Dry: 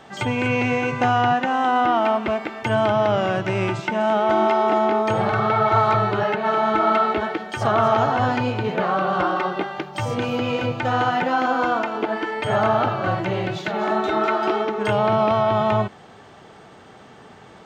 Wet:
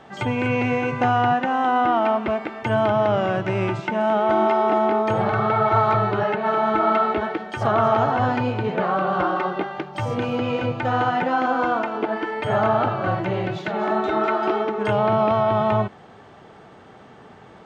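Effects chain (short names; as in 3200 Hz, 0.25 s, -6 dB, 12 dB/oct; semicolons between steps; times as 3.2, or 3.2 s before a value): high shelf 3600 Hz -9.5 dB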